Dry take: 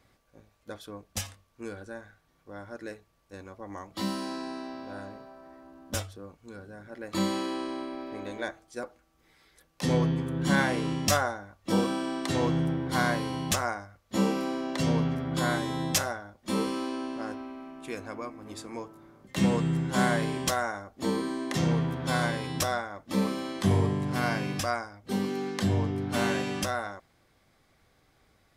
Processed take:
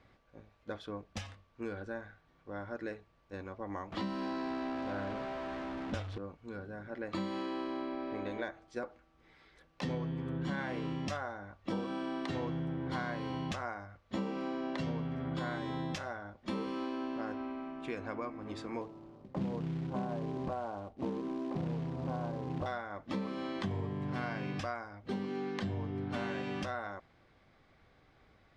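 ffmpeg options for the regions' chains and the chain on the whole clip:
-filter_complex "[0:a]asettb=1/sr,asplit=3[a][b][c];[a]atrim=end=3.924[d];[b]atrim=start=3.92:end=6.18,asetpts=PTS-STARTPTS,afade=t=in:d=0.004:c=qsin,afade=t=out:st=2.256:d=0.004:c=qsin,aeval=exprs='val(0)+0.5*0.0133*sgn(val(0))':c=same,highshelf=f=8k:g=-9.5[e];[c]atrim=start=6.176[f];[d][e]acrossfade=d=0.004:c1=hsin:c2=qsin[g];[g][f]acrossfade=d=0.004:c1=qsin:c2=hsin,asettb=1/sr,asplit=3[h][i][j];[h]atrim=end=18.814[k];[i]atrim=start=18.81:end=22.66,asetpts=PTS-STARTPTS,afade=t=in:d=0.004:c=qsin,afade=t=out:st=3.846:d=0.004:c=qsin,lowpass=f=1k:w=0.5412,lowpass=f=1k:w=1.3066,acrusher=bits=4:mode=log:mix=0:aa=0.000001[l];[j]atrim=start=22.656[m];[k][l]acrossfade=d=0.004:c1=hsin:c2=qsin[n];[n][m]acrossfade=d=0.004:c1=qsin:c2=hsin,acompressor=threshold=-35dB:ratio=6,lowpass=3.4k,volume=1dB"

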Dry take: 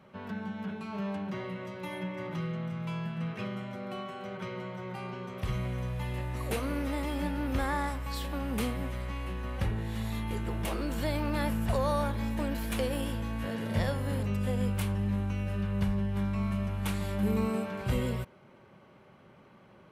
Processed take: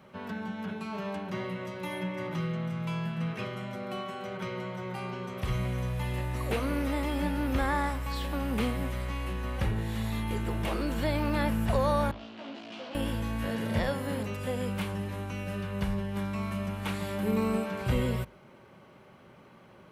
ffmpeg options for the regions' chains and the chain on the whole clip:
-filter_complex "[0:a]asettb=1/sr,asplit=3[a][b][c];[a]atrim=end=12.114[d];[b]atrim=start=12.11:end=12.95,asetpts=PTS-STARTPTS,afade=t=in:d=0.004:c=qsin,afade=t=out:st=0.836:d=0.004:c=qsin,aeval=exprs='(tanh(178*val(0)+0.65)-tanh(0.65))/178':c=same,highpass=f=160:w=0.5412,highpass=f=160:w=1.3066,equalizer=f=270:t=q:w=4:g=4,equalizer=f=380:t=q:w=4:g=-3,equalizer=f=670:t=q:w=4:g=6,equalizer=f=1.8k:t=q:w=4:g=-4,equalizer=f=2.9k:t=q:w=4:g=7,lowpass=f=4.8k:w=0.5412,lowpass=f=4.8k:w=1.3066,asplit=2[e][f];[f]adelay=15,volume=-2dB[g];[e][g]amix=inputs=2:normalize=0,atrim=end_sample=37044[h];[c]atrim=start=12.946[i];[d][h]acrossfade=d=0.004:c1=hsin:c2=qsin[j];[j][i]acrossfade=d=0.004:c1=qsin:c2=hsin,acrossover=split=4000[k][l];[l]acompressor=threshold=-54dB:ratio=4:attack=1:release=60[m];[k][m]amix=inputs=2:normalize=0,highshelf=f=5.4k:g=5,bandreject=f=50:t=h:w=6,bandreject=f=100:t=h:w=6,bandreject=f=150:t=h:w=6,bandreject=f=200:t=h:w=6,volume=2.5dB"

